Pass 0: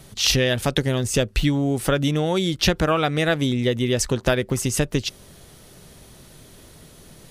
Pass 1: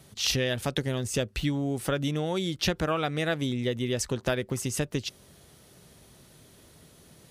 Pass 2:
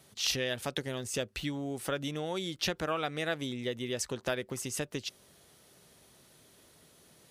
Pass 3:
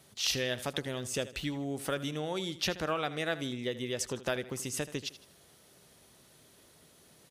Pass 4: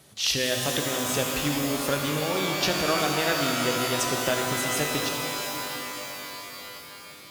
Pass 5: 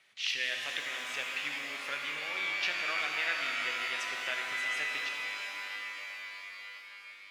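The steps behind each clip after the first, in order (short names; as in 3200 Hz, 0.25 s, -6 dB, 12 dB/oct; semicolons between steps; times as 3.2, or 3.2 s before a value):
HPF 56 Hz; gain -7.5 dB
low shelf 210 Hz -10 dB; gain -3.5 dB
feedback echo 79 ms, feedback 38%, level -15.5 dB
shimmer reverb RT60 4 s, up +12 st, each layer -2 dB, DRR 2 dB; gain +5 dB
band-pass 2200 Hz, Q 2.9; gain +1.5 dB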